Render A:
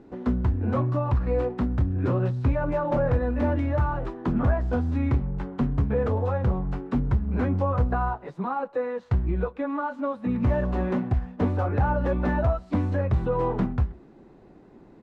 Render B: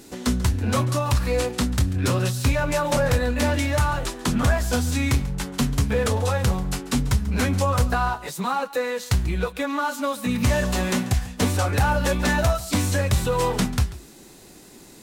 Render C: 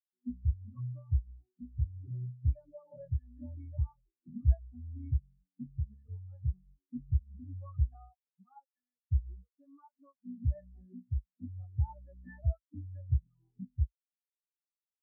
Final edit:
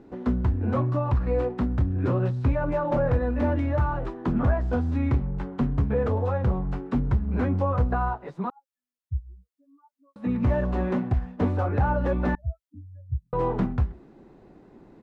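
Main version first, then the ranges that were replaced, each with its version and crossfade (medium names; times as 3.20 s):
A
8.50–10.16 s: from C
12.35–13.33 s: from C
not used: B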